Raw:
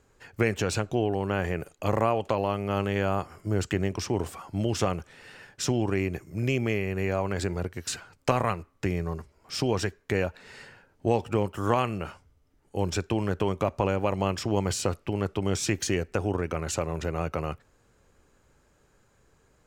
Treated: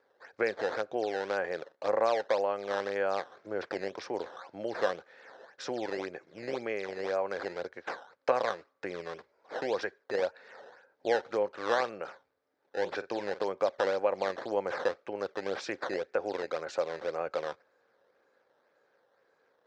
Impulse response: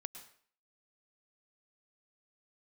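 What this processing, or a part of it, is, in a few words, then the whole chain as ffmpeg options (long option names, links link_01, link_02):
circuit-bent sampling toy: -filter_complex "[0:a]asettb=1/sr,asplit=3[link_01][link_02][link_03];[link_01]atrim=end=12.034[link_04];[link_02]atrim=start=12.03:end=13.42,asetpts=PTS-STARTPTS,afade=type=in:duration=0.004:curve=qsin,afade=type=out:start_time=1.386:duration=0.004:curve=qsin,asplit=2[link_05][link_06];[link_06]adelay=48,volume=-13.5dB[link_07];[link_05][link_07]amix=inputs=2:normalize=0,atrim=end_sample=61299[link_08];[link_03]atrim=start=13.416[link_09];[link_04][link_08]acrossfade=duration=0.004:curve1=hsin:curve2=qsin[link_10];[link_10][link_09]acrossfade=duration=0.004:curve1=qsin:curve2=hsin,acrusher=samples=11:mix=1:aa=0.000001:lfo=1:lforange=17.6:lforate=1.9,highpass=410,equalizer=frequency=520:width_type=q:width=4:gain=10,equalizer=frequency=780:width_type=q:width=4:gain=3,equalizer=frequency=1600:width_type=q:width=4:gain=6,equalizer=frequency=2900:width_type=q:width=4:gain=-7,lowpass=frequency=5000:width=0.5412,lowpass=frequency=5000:width=1.3066,volume=-5.5dB"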